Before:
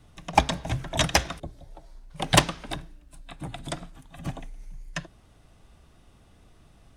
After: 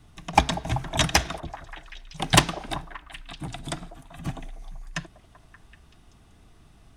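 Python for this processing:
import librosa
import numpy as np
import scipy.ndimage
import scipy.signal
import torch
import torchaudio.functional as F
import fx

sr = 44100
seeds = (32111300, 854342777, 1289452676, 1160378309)

p1 = fx.peak_eq(x, sr, hz=540.0, db=-9.0, octaves=0.28)
p2 = p1 + fx.echo_stepped(p1, sr, ms=192, hz=530.0, octaves=0.7, feedback_pct=70, wet_db=-10.5, dry=0)
y = p2 * librosa.db_to_amplitude(1.5)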